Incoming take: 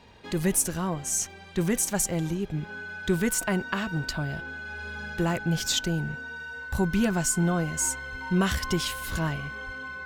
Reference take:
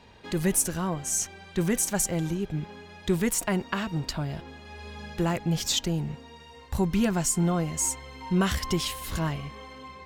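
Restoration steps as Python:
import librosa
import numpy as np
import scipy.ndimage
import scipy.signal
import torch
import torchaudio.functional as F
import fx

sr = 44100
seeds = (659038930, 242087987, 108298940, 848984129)

y = fx.fix_declick_ar(x, sr, threshold=6.5)
y = fx.notch(y, sr, hz=1500.0, q=30.0)
y = fx.highpass(y, sr, hz=140.0, slope=24, at=(8.11, 8.23), fade=0.02)
y = fx.highpass(y, sr, hz=140.0, slope=24, at=(9.65, 9.77), fade=0.02)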